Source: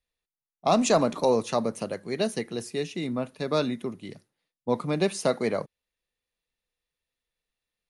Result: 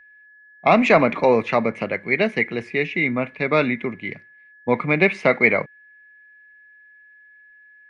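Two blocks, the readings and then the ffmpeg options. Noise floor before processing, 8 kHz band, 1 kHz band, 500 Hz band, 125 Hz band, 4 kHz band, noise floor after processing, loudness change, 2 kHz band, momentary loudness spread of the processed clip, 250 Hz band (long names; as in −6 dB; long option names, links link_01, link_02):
below −85 dBFS, below −10 dB, +7.0 dB, +6.0 dB, +5.5 dB, +0.5 dB, −51 dBFS, +7.5 dB, +18.5 dB, 11 LU, +5.5 dB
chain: -af "lowpass=frequency=2200:width_type=q:width=11,aeval=exprs='val(0)+0.00224*sin(2*PI*1700*n/s)':channel_layout=same,volume=5.5dB"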